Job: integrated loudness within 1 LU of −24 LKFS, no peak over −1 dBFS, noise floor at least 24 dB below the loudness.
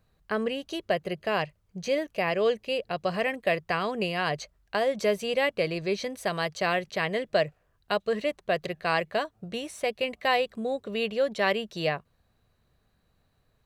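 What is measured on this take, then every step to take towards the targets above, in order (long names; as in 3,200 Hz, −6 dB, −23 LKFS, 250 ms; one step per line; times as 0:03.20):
integrated loudness −29.0 LKFS; sample peak −11.0 dBFS; target loudness −24.0 LKFS
→ level +5 dB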